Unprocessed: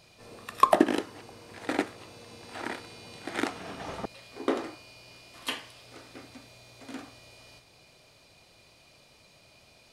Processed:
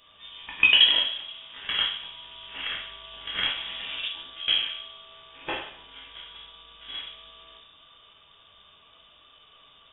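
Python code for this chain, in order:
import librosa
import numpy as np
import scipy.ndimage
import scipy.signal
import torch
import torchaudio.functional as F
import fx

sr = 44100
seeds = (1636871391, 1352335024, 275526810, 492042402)

y = fx.room_shoebox(x, sr, seeds[0], volume_m3=110.0, walls='mixed', distance_m=1.2)
y = fx.freq_invert(y, sr, carrier_hz=3600)
y = F.gain(torch.from_numpy(y), -1.5).numpy()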